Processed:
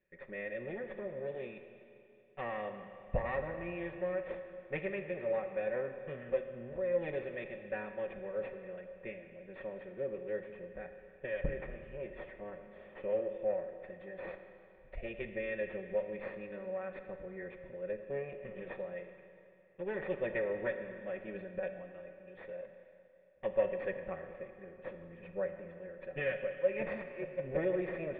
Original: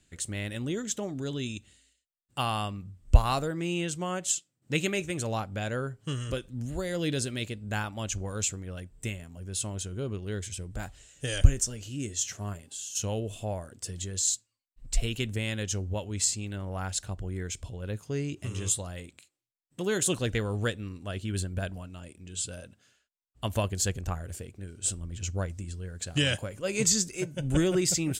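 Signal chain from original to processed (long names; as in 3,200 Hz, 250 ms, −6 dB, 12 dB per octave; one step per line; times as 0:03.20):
lower of the sound and its delayed copy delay 5.3 ms
formant resonators in series e
parametric band 1,100 Hz +6.5 dB 0.92 octaves
four-comb reverb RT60 2.7 s, combs from 26 ms, DRR 7 dB
level +4 dB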